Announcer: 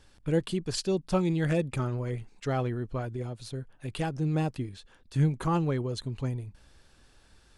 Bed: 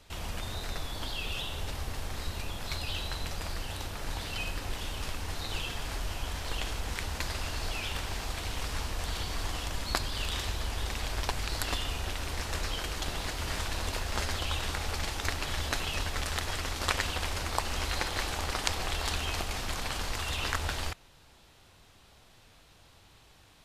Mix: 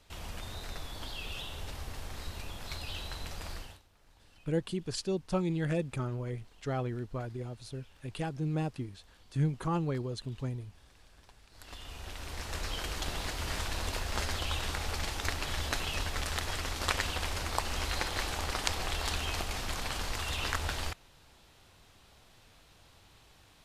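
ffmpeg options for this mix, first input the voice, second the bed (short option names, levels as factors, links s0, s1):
-filter_complex "[0:a]adelay=4200,volume=0.596[s0];[1:a]volume=11.2,afade=t=out:st=3.54:d=0.27:silence=0.0749894,afade=t=in:st=11.51:d=1.39:silence=0.0501187[s1];[s0][s1]amix=inputs=2:normalize=0"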